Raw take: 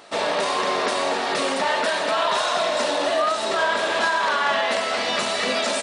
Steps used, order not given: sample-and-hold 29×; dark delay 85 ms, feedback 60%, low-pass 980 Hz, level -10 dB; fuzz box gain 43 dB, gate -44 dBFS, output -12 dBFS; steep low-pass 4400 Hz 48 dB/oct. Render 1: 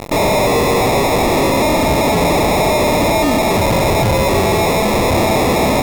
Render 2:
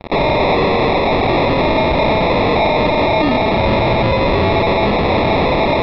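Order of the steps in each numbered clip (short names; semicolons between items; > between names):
steep low-pass > sample-and-hold > fuzz box > dark delay; fuzz box > dark delay > sample-and-hold > steep low-pass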